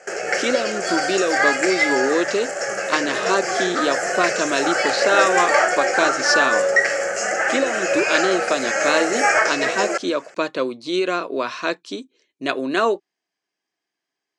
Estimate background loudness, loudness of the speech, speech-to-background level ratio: -20.0 LUFS, -23.0 LUFS, -3.0 dB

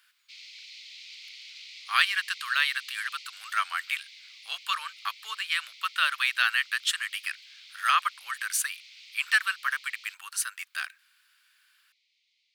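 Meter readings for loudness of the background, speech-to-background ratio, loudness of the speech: -46.0 LUFS, 17.5 dB, -28.5 LUFS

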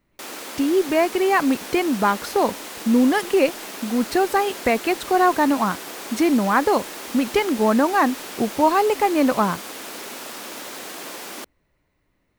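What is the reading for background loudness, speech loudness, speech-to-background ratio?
-33.0 LUFS, -20.5 LUFS, 12.5 dB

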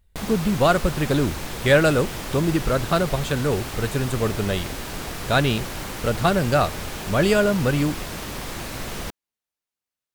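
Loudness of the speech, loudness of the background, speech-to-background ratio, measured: -22.5 LUFS, -31.5 LUFS, 9.0 dB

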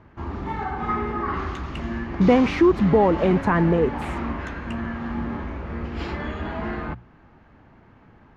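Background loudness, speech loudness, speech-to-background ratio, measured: -30.0 LUFS, -19.5 LUFS, 10.5 dB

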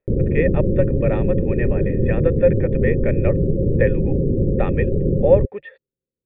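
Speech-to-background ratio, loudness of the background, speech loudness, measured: -3.0 dB, -20.5 LUFS, -23.5 LUFS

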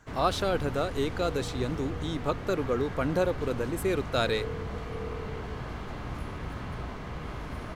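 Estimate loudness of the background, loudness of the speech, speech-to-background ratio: -37.5 LUFS, -30.0 LUFS, 7.5 dB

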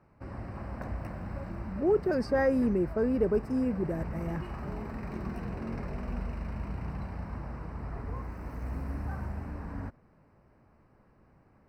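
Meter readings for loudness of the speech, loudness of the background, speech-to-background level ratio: -29.0 LUFS, -39.5 LUFS, 10.5 dB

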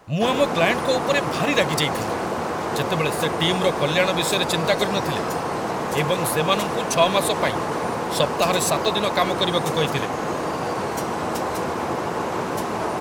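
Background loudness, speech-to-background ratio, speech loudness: -25.5 LUFS, 2.5 dB, -23.0 LUFS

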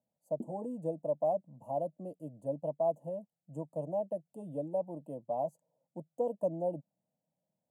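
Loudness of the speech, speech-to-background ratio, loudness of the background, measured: -37.0 LUFS, 11.5 dB, -48.5 LUFS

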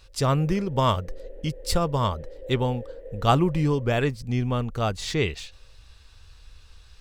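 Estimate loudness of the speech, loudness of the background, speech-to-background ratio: -25.5 LUFS, -44.0 LUFS, 18.5 dB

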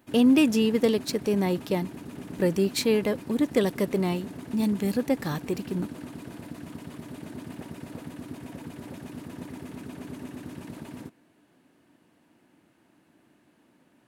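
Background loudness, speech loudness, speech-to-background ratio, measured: -41.0 LUFS, -25.5 LUFS, 15.5 dB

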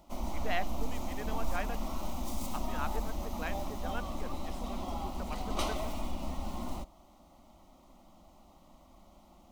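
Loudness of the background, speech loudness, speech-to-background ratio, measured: -39.0 LUFS, -43.5 LUFS, -4.5 dB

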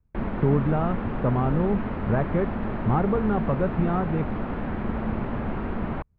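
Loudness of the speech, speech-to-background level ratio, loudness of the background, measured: -26.5 LUFS, 3.5 dB, -30.0 LUFS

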